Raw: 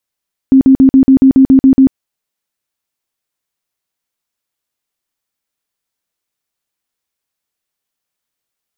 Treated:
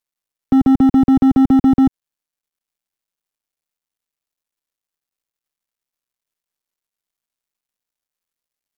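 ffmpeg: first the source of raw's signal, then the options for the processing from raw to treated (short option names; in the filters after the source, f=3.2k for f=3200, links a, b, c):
-f lavfi -i "aevalsrc='0.794*sin(2*PI*266*mod(t,0.14))*lt(mod(t,0.14),24/266)':d=1.4:s=44100"
-filter_complex "[0:a]acrossover=split=180|360[a][b][c];[b]asoftclip=type=hard:threshold=-15dB[d];[c]alimiter=limit=-21.5dB:level=0:latency=1:release=50[e];[a][d][e]amix=inputs=3:normalize=0,acrusher=bits=9:dc=4:mix=0:aa=0.000001"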